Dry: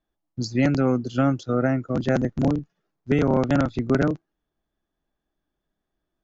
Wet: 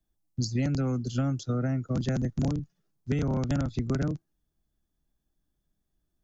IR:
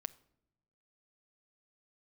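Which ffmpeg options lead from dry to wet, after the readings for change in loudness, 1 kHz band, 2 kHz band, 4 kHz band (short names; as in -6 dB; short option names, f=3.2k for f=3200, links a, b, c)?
-6.5 dB, -11.5 dB, -11.5 dB, -3.5 dB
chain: -filter_complex "[0:a]acrossover=split=180|410|910[a][b][c][d];[a]acompressor=threshold=-34dB:ratio=4[e];[b]acompressor=threshold=-32dB:ratio=4[f];[c]acompressor=threshold=-32dB:ratio=4[g];[d]acompressor=threshold=-35dB:ratio=4[h];[e][f][g][h]amix=inputs=4:normalize=0,bass=f=250:g=13,treble=f=4k:g=13,volume=-7.5dB"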